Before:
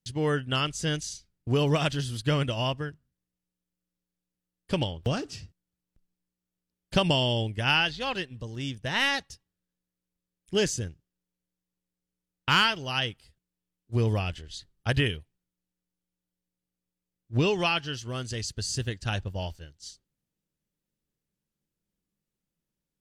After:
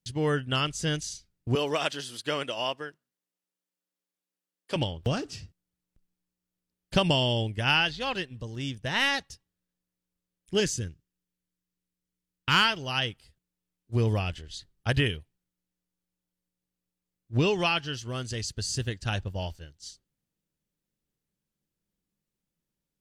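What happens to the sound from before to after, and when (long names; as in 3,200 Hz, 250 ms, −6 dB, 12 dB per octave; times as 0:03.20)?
0:01.55–0:04.76: high-pass filter 380 Hz
0:10.60–0:12.54: parametric band 700 Hz −8 dB 0.91 octaves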